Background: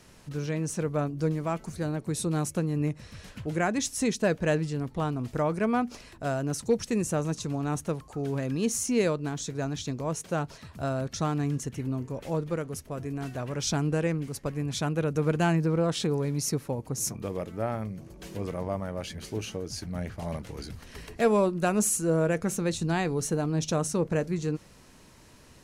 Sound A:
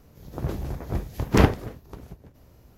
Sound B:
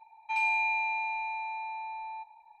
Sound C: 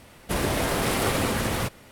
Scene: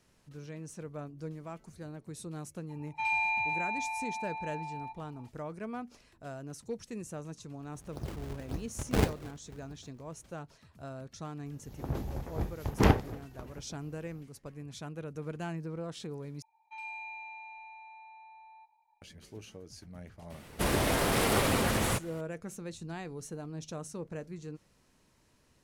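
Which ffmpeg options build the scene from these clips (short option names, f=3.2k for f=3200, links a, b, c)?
-filter_complex "[2:a]asplit=2[a][b];[1:a]asplit=2[c][d];[0:a]volume=-13.5dB[e];[c]acrusher=samples=35:mix=1:aa=0.000001:lfo=1:lforange=56:lforate=1.8[f];[d]equalizer=f=830:t=o:w=0.24:g=4.5[g];[b]bandreject=f=600:w=5.4[h];[e]asplit=2[i][j];[i]atrim=end=16.424[k];[h]atrim=end=2.6,asetpts=PTS-STARTPTS,volume=-14.5dB[l];[j]atrim=start=19.016[m];[a]atrim=end=2.6,asetpts=PTS-STARTPTS,volume=-2dB,afade=t=in:d=0.004:c=hsin,afade=t=out:st=2.596:d=0.004:c=hsin,adelay=2690[n];[f]atrim=end=2.77,asetpts=PTS-STARTPTS,volume=-10.5dB,afade=t=in:d=0.004:c=hsin,afade=t=out:st=2.766:d=0.004:c=hsin,adelay=7590[o];[g]atrim=end=2.77,asetpts=PTS-STARTPTS,volume=-6dB,afade=t=in:d=0.004:c=hsin,afade=t=out:st=2.766:d=0.004:c=hsin,adelay=505386S[p];[3:a]atrim=end=1.91,asetpts=PTS-STARTPTS,volume=-3dB,afade=t=in:d=0.004:c=hsin,afade=t=out:st=1.906:d=0.004:c=hsin,adelay=20300[q];[k][l]acrossfade=d=0.004:c1=hsin:c2=hsin[r];[r][m]acrossfade=d=0.004:c1=hsin:c2=hsin[s];[s][n][o][p][q]amix=inputs=5:normalize=0"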